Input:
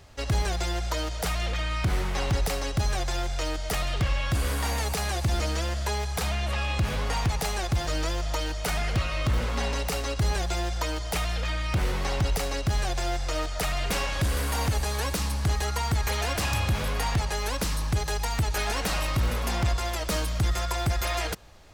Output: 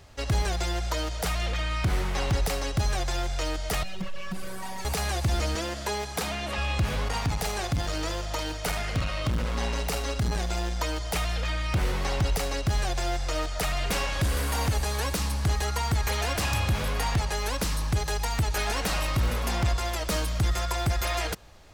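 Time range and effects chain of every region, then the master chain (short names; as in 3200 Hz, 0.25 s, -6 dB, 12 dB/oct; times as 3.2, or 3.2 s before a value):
3.83–4.85 robotiser 189 Hz + hard clip -25.5 dBFS
5.55–6.58 HPF 210 Hz 6 dB/oct + bell 270 Hz +6.5 dB 1.2 oct
7.08–10.8 doubler 48 ms -8 dB + core saturation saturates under 140 Hz
whole clip: dry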